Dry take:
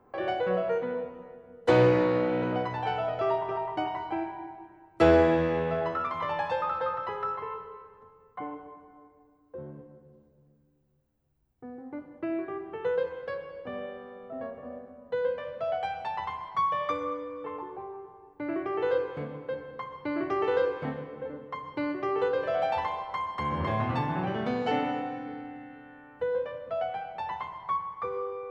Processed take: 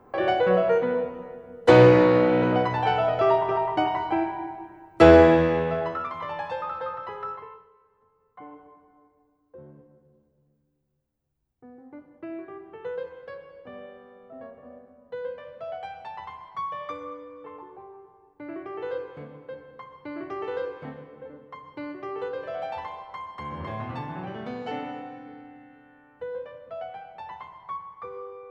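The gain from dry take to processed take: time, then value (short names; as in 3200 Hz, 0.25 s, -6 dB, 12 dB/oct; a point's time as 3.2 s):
5.25 s +7 dB
6.21 s -2 dB
7.32 s -2 dB
7.73 s -14.5 dB
8.59 s -5 dB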